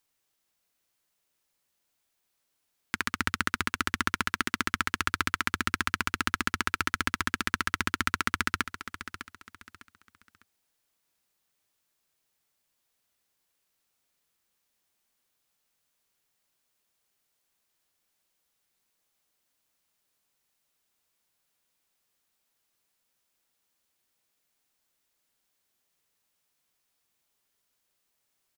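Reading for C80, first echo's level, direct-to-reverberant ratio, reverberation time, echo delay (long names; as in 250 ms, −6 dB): no reverb audible, −12.0 dB, no reverb audible, no reverb audible, 603 ms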